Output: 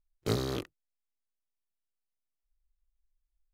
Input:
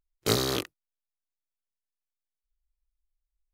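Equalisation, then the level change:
spectral tilt −2 dB per octave
−7.0 dB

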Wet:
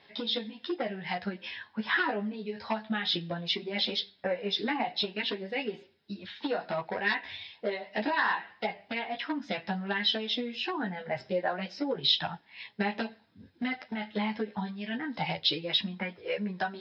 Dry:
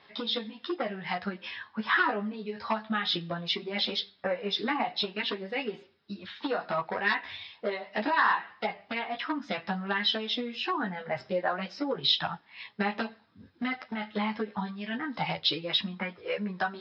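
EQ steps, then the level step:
parametric band 1,200 Hz −10.5 dB 0.41 octaves
0.0 dB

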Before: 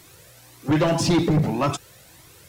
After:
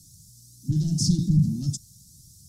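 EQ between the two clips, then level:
elliptic band-stop filter 210–5,300 Hz, stop band 40 dB
low-pass filter 11,000 Hz 12 dB per octave
+2.0 dB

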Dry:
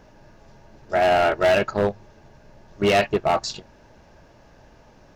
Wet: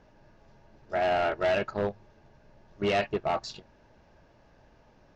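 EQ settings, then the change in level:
low-pass filter 5,300 Hz 12 dB per octave
−8.0 dB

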